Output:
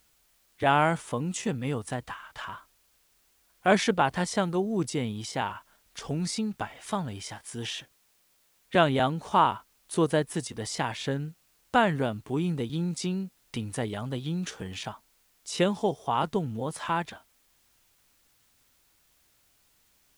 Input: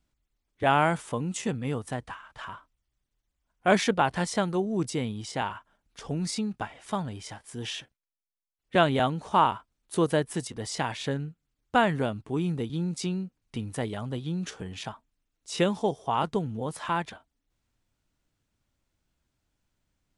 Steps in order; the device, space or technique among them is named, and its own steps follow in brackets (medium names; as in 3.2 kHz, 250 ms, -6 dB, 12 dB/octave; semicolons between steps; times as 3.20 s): noise-reduction cassette on a plain deck (tape noise reduction on one side only encoder only; wow and flutter 28 cents; white noise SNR 37 dB)